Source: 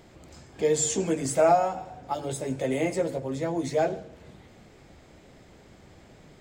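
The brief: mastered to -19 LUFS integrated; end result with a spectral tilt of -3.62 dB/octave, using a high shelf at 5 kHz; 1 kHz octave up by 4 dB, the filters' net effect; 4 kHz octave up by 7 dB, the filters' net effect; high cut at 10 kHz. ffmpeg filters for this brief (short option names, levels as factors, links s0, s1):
-af "lowpass=10000,equalizer=f=1000:t=o:g=6,equalizer=f=4000:t=o:g=7,highshelf=f=5000:g=3.5,volume=1.88"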